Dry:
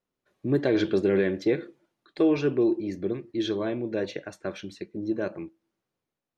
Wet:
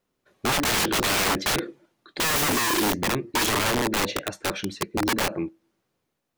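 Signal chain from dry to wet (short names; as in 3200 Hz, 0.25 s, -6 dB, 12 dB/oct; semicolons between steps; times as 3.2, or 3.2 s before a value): 2.23–2.92 overdrive pedal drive 41 dB, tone 2500 Hz, clips at -12.5 dBFS; wrapped overs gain 26.5 dB; gain +8.5 dB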